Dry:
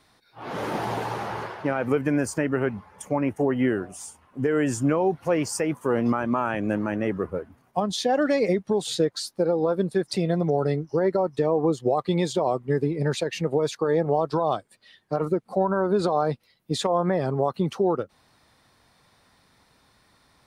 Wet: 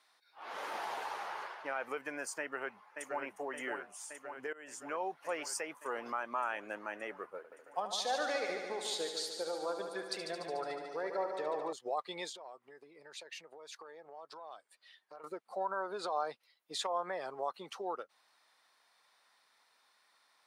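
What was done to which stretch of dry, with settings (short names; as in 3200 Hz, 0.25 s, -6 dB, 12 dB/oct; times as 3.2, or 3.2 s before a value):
2.39–3.2 echo throw 0.57 s, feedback 75%, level -5.5 dB
4.53–4.99 fade in, from -23 dB
7.37–11.73 multi-head echo 73 ms, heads first and second, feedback 67%, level -10 dB
12.29–15.24 compressor 4:1, threshold -35 dBFS
whole clip: HPF 800 Hz 12 dB/oct; high shelf 9900 Hz -3.5 dB; gain -7 dB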